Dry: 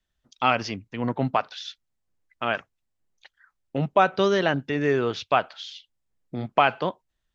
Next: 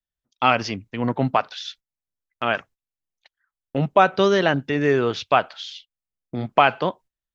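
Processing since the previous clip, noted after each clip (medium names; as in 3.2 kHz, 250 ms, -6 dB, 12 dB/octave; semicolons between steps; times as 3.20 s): gate -47 dBFS, range -18 dB; trim +3.5 dB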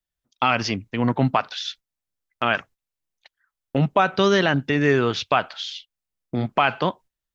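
dynamic bell 510 Hz, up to -5 dB, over -28 dBFS, Q 1; peak limiter -9.5 dBFS, peak gain reduction 6 dB; trim +3.5 dB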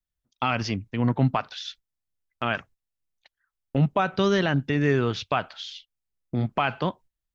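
bass shelf 180 Hz +10 dB; trim -6 dB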